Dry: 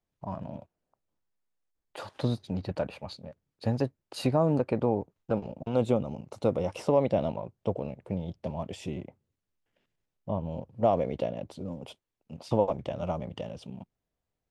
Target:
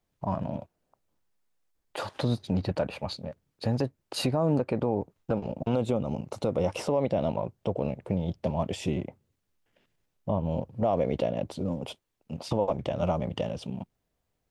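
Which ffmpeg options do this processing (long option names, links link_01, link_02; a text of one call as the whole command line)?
ffmpeg -i in.wav -af "alimiter=limit=-22dB:level=0:latency=1:release=171,volume=6.5dB" out.wav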